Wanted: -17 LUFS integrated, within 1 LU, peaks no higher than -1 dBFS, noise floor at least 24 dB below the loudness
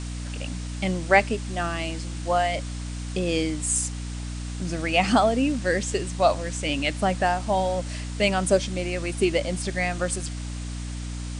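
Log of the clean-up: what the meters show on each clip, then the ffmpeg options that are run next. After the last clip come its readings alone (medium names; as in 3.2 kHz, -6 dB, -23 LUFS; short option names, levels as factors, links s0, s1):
hum 60 Hz; highest harmonic 300 Hz; hum level -30 dBFS; noise floor -33 dBFS; noise floor target -50 dBFS; loudness -25.5 LUFS; peak level -4.5 dBFS; loudness target -17.0 LUFS
-> -af "bandreject=f=60:t=h:w=4,bandreject=f=120:t=h:w=4,bandreject=f=180:t=h:w=4,bandreject=f=240:t=h:w=4,bandreject=f=300:t=h:w=4"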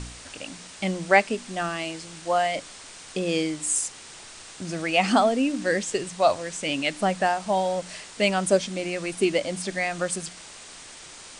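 hum not found; noise floor -44 dBFS; noise floor target -49 dBFS
-> -af "afftdn=nr=6:nf=-44"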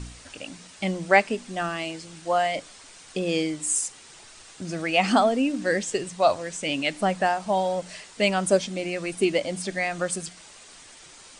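noise floor -48 dBFS; noise floor target -49 dBFS
-> -af "afftdn=nr=6:nf=-48"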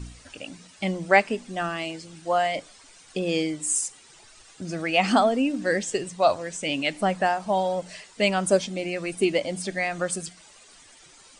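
noise floor -52 dBFS; loudness -25.0 LUFS; peak level -4.5 dBFS; loudness target -17.0 LUFS
-> -af "volume=2.51,alimiter=limit=0.891:level=0:latency=1"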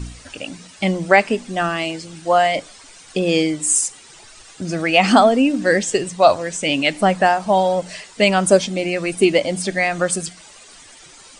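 loudness -17.5 LUFS; peak level -1.0 dBFS; noise floor -44 dBFS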